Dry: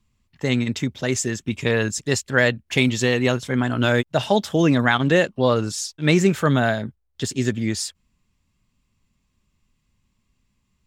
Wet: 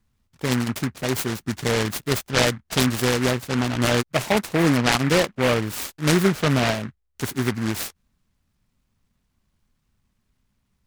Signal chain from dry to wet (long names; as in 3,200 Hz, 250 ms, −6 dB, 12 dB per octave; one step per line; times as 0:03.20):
short delay modulated by noise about 1,400 Hz, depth 0.15 ms
level −1.5 dB